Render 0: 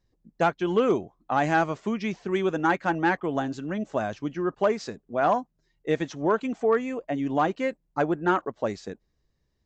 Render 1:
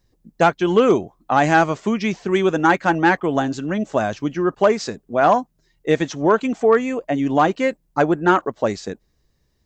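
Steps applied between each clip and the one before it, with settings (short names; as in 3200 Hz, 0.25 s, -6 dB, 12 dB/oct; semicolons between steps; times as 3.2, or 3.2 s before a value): high shelf 6300 Hz +7 dB; gain +7.5 dB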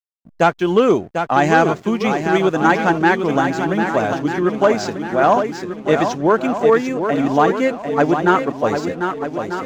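swung echo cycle 1.243 s, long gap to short 1.5:1, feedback 40%, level -7 dB; backlash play -40 dBFS; gain +1 dB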